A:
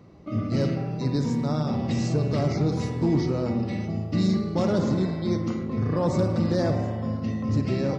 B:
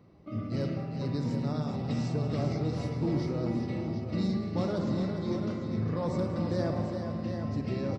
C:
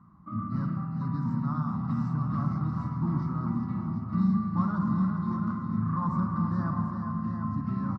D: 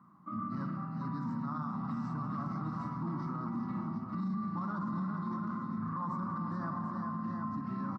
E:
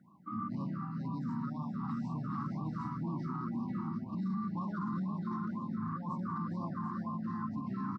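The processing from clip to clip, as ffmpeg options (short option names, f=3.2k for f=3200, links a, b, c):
-filter_complex "[0:a]equalizer=f=6.7k:w=5.1:g=-9.5,asplit=2[a][b];[b]aecho=0:1:185|405|741:0.188|0.422|0.398[c];[a][c]amix=inputs=2:normalize=0,volume=-7.5dB"
-af "firequalizer=gain_entry='entry(120,0);entry(190,7);entry(450,-24);entry(1100,14);entry(2300,-17)':delay=0.05:min_phase=1"
-af "highpass=230,alimiter=level_in=5dB:limit=-24dB:level=0:latency=1:release=38,volume=-5dB"
-af "afftfilt=real='re*(1-between(b*sr/1024,510*pow(1700/510,0.5+0.5*sin(2*PI*2*pts/sr))/1.41,510*pow(1700/510,0.5+0.5*sin(2*PI*2*pts/sr))*1.41))':imag='im*(1-between(b*sr/1024,510*pow(1700/510,0.5+0.5*sin(2*PI*2*pts/sr))/1.41,510*pow(1700/510,0.5+0.5*sin(2*PI*2*pts/sr))*1.41))':win_size=1024:overlap=0.75"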